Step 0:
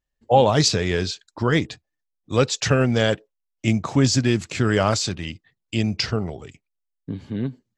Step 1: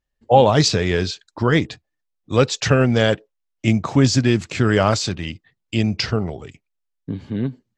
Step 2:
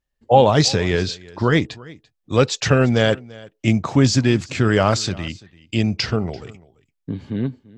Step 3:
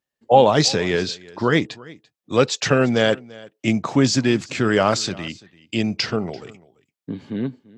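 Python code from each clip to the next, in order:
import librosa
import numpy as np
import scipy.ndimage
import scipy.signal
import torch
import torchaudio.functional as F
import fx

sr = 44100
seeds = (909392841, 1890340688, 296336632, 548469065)

y1 = fx.high_shelf(x, sr, hz=8300.0, db=-10.0)
y1 = F.gain(torch.from_numpy(y1), 3.0).numpy()
y2 = y1 + 10.0 ** (-22.0 / 20.0) * np.pad(y1, (int(340 * sr / 1000.0), 0))[:len(y1)]
y3 = scipy.signal.sosfilt(scipy.signal.butter(2, 170.0, 'highpass', fs=sr, output='sos'), y2)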